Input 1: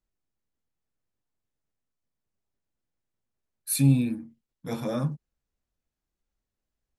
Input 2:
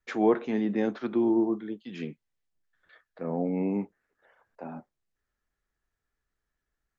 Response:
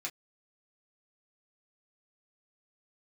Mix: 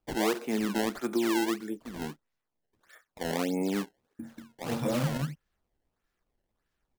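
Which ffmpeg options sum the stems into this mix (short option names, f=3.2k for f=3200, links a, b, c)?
-filter_complex "[0:a]volume=1.5dB,asplit=3[a][b][c];[a]atrim=end=2.2,asetpts=PTS-STARTPTS,afade=t=out:st=2.196:d=0.004:c=hsin[d];[b]atrim=start=2.2:end=4.19,asetpts=PTS-STARTPTS,volume=0[e];[c]atrim=start=4.19,asetpts=PTS-STARTPTS,afade=t=in:d=0.004:c=hsin[f];[d][e][f]concat=n=3:v=0:a=1,asplit=2[g][h];[h]volume=-5.5dB[i];[1:a]lowshelf=f=150:g=-8.5,volume=1dB,asplit=3[j][k][l];[k]volume=-12dB[m];[l]apad=whole_len=308224[n];[g][n]sidechaincompress=threshold=-35dB:ratio=8:attack=6.7:release=288[o];[2:a]atrim=start_sample=2205[p];[m][p]afir=irnorm=-1:irlink=0[q];[i]aecho=0:1:185:1[r];[o][j][q][r]amix=inputs=4:normalize=0,acrusher=samples=21:mix=1:aa=0.000001:lfo=1:lforange=33.6:lforate=1.6,acompressor=threshold=-24dB:ratio=6"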